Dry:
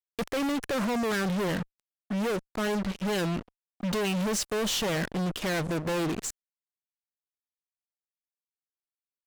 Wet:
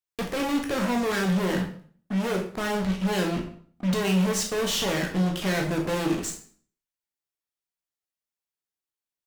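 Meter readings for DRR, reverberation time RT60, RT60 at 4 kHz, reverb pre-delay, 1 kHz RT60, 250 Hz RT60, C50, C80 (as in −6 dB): 1.0 dB, 0.50 s, 0.45 s, 12 ms, 0.50 s, 0.55 s, 7.5 dB, 12.0 dB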